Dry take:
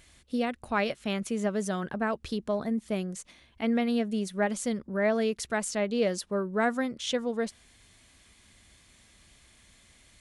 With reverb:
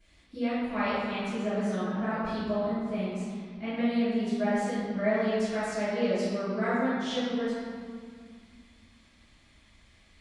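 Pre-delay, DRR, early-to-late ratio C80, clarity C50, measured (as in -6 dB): 3 ms, -21.5 dB, -1.0 dB, -4.0 dB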